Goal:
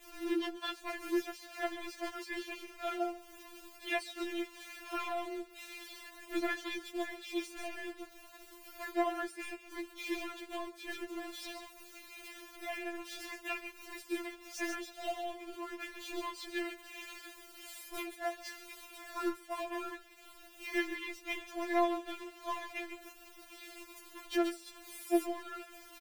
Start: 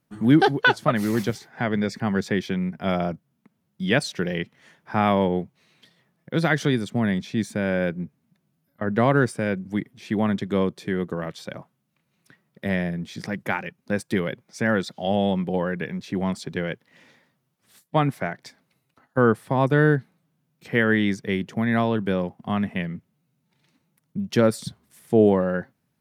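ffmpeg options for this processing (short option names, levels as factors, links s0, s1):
-filter_complex "[0:a]aeval=exprs='val(0)+0.5*0.0422*sgn(val(0))':c=same,acrossover=split=140|1500[s0][s1][s2];[s0]acrusher=samples=14:mix=1:aa=0.000001:lfo=1:lforange=8.4:lforate=2.7[s3];[s3][s1][s2]amix=inputs=3:normalize=0,asplit=3[s4][s5][s6];[s5]asetrate=22050,aresample=44100,atempo=2,volume=0.158[s7];[s6]asetrate=52444,aresample=44100,atempo=0.840896,volume=0.282[s8];[s4][s7][s8]amix=inputs=3:normalize=0,acompressor=threshold=0.0447:ratio=4,aecho=1:1:138:0.282,agate=range=0.0224:threshold=0.1:ratio=3:detection=peak,equalizer=f=2600:w=2.5:g=5.5,afftfilt=real='re*4*eq(mod(b,16),0)':imag='im*4*eq(mod(b,16),0)':win_size=2048:overlap=0.75,volume=1.68"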